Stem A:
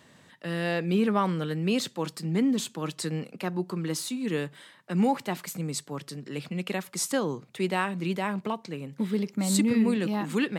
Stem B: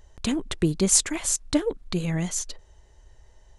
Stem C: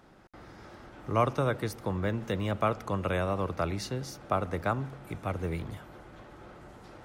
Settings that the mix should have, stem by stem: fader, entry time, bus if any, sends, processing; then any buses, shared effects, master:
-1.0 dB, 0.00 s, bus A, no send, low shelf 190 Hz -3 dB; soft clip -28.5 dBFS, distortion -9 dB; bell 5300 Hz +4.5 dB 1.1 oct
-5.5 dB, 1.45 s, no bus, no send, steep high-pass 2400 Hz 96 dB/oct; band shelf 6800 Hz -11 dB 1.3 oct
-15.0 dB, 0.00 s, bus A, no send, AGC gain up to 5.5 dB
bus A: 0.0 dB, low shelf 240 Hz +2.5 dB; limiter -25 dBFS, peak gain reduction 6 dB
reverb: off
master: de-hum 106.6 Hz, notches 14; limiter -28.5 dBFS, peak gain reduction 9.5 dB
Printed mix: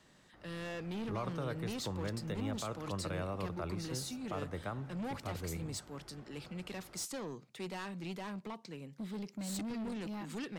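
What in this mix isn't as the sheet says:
stem A -1.0 dB -> -9.5 dB; stem B: muted; master: missing de-hum 106.6 Hz, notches 14

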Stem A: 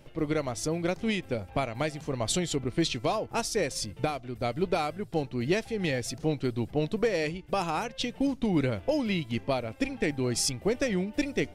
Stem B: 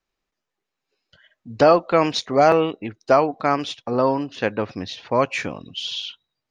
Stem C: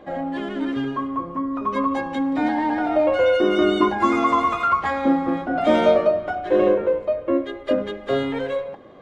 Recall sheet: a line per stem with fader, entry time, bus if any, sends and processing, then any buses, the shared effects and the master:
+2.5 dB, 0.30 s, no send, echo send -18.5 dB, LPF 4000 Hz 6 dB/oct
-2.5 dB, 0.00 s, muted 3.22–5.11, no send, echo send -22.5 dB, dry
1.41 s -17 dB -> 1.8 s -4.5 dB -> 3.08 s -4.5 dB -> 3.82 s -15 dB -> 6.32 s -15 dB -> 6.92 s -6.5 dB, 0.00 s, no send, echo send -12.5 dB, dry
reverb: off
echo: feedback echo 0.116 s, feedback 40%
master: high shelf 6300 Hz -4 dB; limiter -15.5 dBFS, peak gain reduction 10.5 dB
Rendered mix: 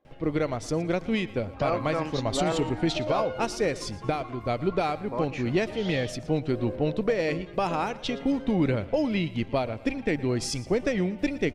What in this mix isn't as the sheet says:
stem A: entry 0.30 s -> 0.05 s; stem B -2.5 dB -> -13.0 dB; stem C -17.0 dB -> -27.5 dB

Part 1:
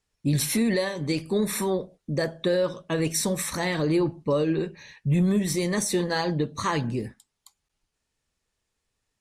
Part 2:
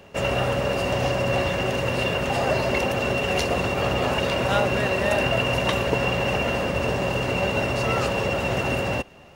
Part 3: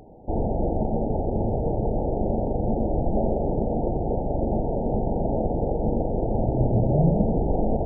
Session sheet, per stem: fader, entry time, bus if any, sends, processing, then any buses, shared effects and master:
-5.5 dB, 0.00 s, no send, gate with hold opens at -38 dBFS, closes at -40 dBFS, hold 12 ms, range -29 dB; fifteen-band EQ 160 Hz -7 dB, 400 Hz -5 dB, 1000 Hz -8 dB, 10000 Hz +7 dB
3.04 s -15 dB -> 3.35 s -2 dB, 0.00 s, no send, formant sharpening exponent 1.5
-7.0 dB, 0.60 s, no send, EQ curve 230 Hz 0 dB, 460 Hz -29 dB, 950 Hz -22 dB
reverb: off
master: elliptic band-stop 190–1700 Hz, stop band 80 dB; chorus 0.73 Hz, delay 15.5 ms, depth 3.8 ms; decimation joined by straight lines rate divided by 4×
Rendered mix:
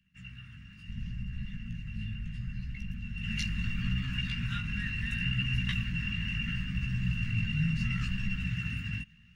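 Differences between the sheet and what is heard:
stem 1: muted; master: missing decimation joined by straight lines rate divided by 4×

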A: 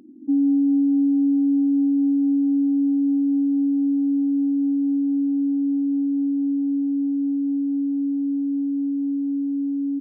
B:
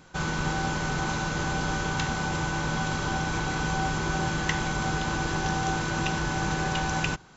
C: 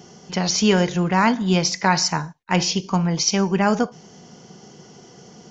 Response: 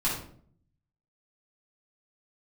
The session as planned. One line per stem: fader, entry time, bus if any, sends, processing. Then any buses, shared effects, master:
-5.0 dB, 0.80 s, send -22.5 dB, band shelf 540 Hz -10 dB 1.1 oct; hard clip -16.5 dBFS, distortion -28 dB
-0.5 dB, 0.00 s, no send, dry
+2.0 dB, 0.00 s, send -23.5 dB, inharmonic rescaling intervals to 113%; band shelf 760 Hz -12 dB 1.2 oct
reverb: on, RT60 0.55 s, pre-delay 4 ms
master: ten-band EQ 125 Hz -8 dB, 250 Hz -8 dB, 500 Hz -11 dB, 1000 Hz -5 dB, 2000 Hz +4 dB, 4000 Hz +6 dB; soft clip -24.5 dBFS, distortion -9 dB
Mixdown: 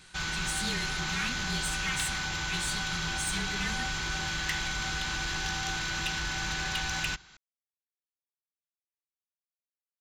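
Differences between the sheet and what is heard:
stem A: muted; stem C +2.0 dB -> -8.5 dB

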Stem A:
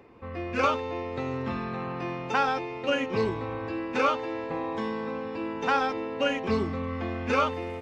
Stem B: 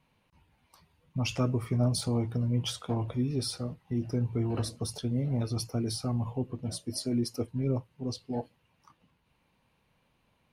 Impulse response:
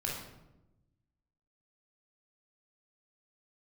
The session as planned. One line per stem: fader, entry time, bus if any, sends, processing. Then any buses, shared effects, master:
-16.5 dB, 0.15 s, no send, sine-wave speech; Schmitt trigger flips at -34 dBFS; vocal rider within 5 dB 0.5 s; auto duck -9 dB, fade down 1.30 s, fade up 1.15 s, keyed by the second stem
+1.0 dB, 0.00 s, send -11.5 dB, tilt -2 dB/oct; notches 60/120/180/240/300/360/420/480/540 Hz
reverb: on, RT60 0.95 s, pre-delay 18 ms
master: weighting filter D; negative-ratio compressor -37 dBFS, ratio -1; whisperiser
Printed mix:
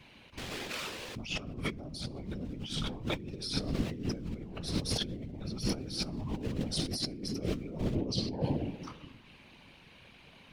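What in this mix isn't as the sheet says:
stem A: missing sine-wave speech; stem B: missing notches 60/120/180/240/300/360/420/480/540 Hz

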